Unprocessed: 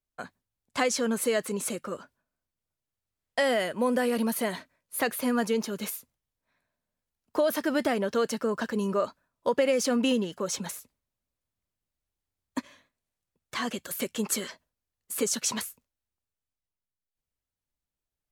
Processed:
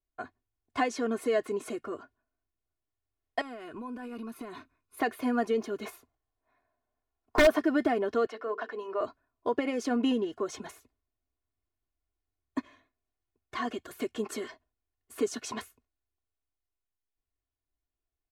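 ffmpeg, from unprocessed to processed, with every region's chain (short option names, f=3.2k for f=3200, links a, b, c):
-filter_complex "[0:a]asettb=1/sr,asplit=3[a][b][c];[a]atrim=end=3.414[d];[b]atrim=start=3.41:end=4.97,asetpts=PTS-STARTPTS,afade=t=in:d=0.004:c=qsin,afade=t=out:st=1.556:d=0.004:c=qsin,acompressor=threshold=-34dB:ratio=16:attack=3.2:release=140:knee=1:detection=peak,aecho=1:1:0.8:0.56,atrim=end_sample=68796[e];[c]atrim=start=4.966[f];[d][e]acrossfade=d=0.004:c1=hsin:c2=qsin[g];[g][f]acrossfade=d=0.004:c1=qsin:c2=hsin,asettb=1/sr,asplit=3[h][i][j];[h]atrim=end=5.854[k];[i]atrim=start=5.85:end=7.59,asetpts=PTS-STARTPTS,afade=t=in:d=0.004:c=qsin,afade=t=out:st=1.736:d=0.004:c=qsin,equalizer=f=830:w=0.68:g=8,aeval=exprs='(mod(3.98*val(0)+1,2)-1)/3.98':c=same[l];[j]atrim=start=7.586[m];[k][l]acrossfade=d=0.004:c1=hsin:c2=qsin[n];[n][m]acrossfade=d=0.004:c1=qsin:c2=hsin,asettb=1/sr,asplit=3[o][p][q];[o]atrim=end=8.264[r];[p]atrim=start=8.26:end=9.01,asetpts=PTS-STARTPTS,afade=t=in:d=0.004:c=qsin,afade=t=out:st=0.746:d=0.004:c=qsin,acrossover=split=420 4600:gain=0.0891 1 0.178[s][t][u];[s][t][u]amix=inputs=3:normalize=0,bandreject=f=50:t=h:w=6,bandreject=f=100:t=h:w=6,bandreject=f=150:t=h:w=6,bandreject=f=200:t=h:w=6,bandreject=f=250:t=h:w=6,bandreject=f=300:t=h:w=6,bandreject=f=350:t=h:w=6,bandreject=f=400:t=h:w=6,bandreject=f=450:t=h:w=6,bandreject=f=500:t=h:w=6[v];[q]atrim=start=9.006[w];[r][v]acrossfade=d=0.004:c1=hsin:c2=qsin[x];[x][w]acrossfade=d=0.004:c1=qsin:c2=hsin,lowpass=f=1.3k:p=1,aecho=1:1:2.8:0.8,volume=-1.5dB"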